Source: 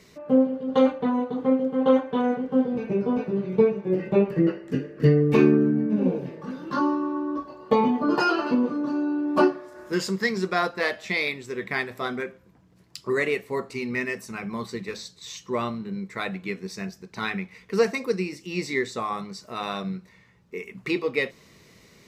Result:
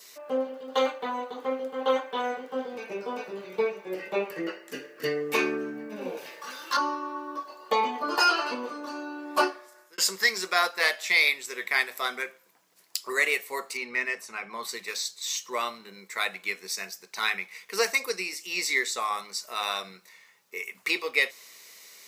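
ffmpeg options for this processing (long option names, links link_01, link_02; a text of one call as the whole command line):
ffmpeg -i in.wav -filter_complex "[0:a]asettb=1/sr,asplit=3[link_01][link_02][link_03];[link_01]atrim=end=6.174[link_04];[link_02]atrim=start=6.17:end=6.77,asetpts=PTS-STARTPTS,afade=type=in:duration=0.004:curve=qsin,afade=type=out:start_time=0.596:duration=0.004:curve=qsin,tiltshelf=frequency=670:gain=-7.5[link_05];[link_03]atrim=start=6.766[link_06];[link_04][link_05]acrossfade=duration=0.004:curve1=hsin:curve2=qsin[link_07];[link_07][link_06]acrossfade=duration=0.004:curve1=qsin:curve2=hsin,asettb=1/sr,asplit=3[link_08][link_09][link_10];[link_08]atrim=end=13.774[link_11];[link_09]atrim=start=13.77:end=14.63,asetpts=PTS-STARTPTS,afade=type=in:duration=0.004:curve=qsin,afade=type=out:start_time=0.856:duration=0.004:curve=qsin,aemphasis=mode=reproduction:type=75fm[link_12];[link_10]atrim=start=14.626[link_13];[link_11][link_12]acrossfade=duration=0.004:curve1=hsin:curve2=qsin[link_14];[link_14][link_13]acrossfade=duration=0.004:curve1=qsin:curve2=hsin,asplit=2[link_15][link_16];[link_15]atrim=end=9.98,asetpts=PTS-STARTPTS,afade=type=out:start_time=9.43:duration=0.55[link_17];[link_16]atrim=start=9.98,asetpts=PTS-STARTPTS,afade=type=in:duration=0.004:curve=hsin[link_18];[link_17][link_18]concat=n=2:v=0:a=1,adynamicequalizer=threshold=0.00447:dfrequency=2200:dqfactor=7.3:tfrequency=2200:tqfactor=7.3:attack=5:release=100:ratio=0.375:range=1.5:mode=boostabove:tftype=bell,highpass=660,aemphasis=mode=production:type=75kf" out.wav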